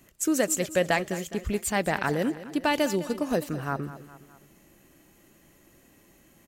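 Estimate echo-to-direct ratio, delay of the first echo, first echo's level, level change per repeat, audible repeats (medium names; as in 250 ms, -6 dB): -13.5 dB, 207 ms, -15.0 dB, -5.5 dB, 3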